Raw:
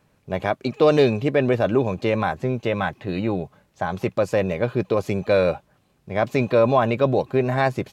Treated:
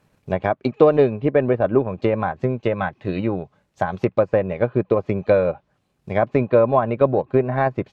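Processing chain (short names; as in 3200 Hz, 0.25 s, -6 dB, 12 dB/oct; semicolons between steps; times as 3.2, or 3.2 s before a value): transient shaper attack +5 dB, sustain -6 dB; treble ducked by the level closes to 1600 Hz, closed at -16.5 dBFS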